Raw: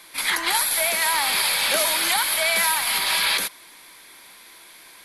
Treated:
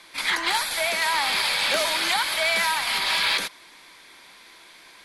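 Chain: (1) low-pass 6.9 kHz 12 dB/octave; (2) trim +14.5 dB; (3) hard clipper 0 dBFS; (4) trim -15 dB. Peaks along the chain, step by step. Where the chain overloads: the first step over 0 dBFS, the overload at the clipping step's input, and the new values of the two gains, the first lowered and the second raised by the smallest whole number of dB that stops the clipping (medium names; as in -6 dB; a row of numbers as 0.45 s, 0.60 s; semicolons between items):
-10.5 dBFS, +4.0 dBFS, 0.0 dBFS, -15.0 dBFS; step 2, 4.0 dB; step 2 +10.5 dB, step 4 -11 dB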